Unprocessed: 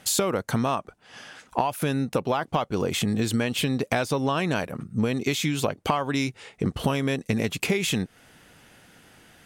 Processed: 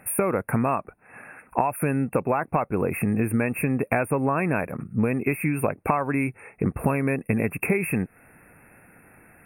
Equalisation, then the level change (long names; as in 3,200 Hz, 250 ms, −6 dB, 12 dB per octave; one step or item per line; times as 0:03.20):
linear-phase brick-wall band-stop 2,700–8,700 Hz
+1.5 dB